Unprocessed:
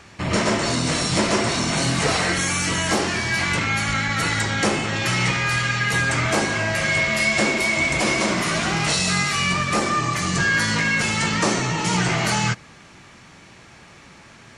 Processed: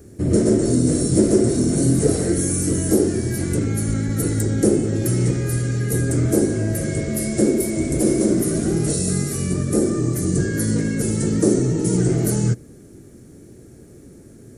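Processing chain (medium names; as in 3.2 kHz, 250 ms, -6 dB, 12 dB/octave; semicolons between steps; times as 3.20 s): FFT filter 120 Hz 0 dB, 180 Hz -4 dB, 270 Hz +3 dB, 420 Hz +3 dB, 1 kHz -28 dB, 1.5 kHz -20 dB, 2.7 kHz -29 dB, 4.7 kHz -19 dB, 7.3 kHz -8 dB, 12 kHz +9 dB; trim +6.5 dB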